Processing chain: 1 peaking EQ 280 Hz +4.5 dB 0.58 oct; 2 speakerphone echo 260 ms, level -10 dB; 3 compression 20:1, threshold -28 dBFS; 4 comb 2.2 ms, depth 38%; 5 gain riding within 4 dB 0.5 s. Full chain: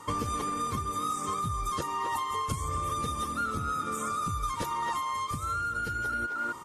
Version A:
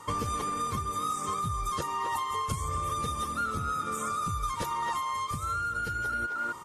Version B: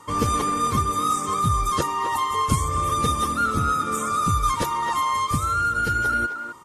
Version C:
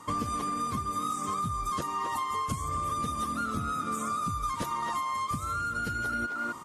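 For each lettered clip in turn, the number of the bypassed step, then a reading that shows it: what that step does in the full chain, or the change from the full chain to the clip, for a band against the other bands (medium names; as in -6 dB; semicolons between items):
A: 1, 250 Hz band -2.0 dB; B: 3, mean gain reduction 8.0 dB; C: 4, 250 Hz band +3.5 dB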